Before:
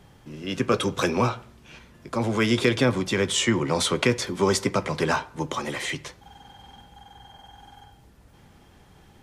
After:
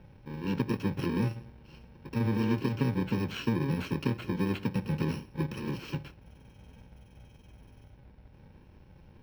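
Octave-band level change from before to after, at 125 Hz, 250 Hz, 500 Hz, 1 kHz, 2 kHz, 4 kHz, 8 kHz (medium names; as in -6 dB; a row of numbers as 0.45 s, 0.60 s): -1.5 dB, -4.0 dB, -12.0 dB, -12.5 dB, -13.0 dB, -16.0 dB, -23.5 dB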